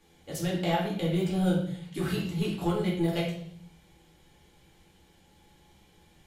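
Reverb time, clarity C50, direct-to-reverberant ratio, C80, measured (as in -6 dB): 0.65 s, 4.0 dB, -5.5 dB, 8.0 dB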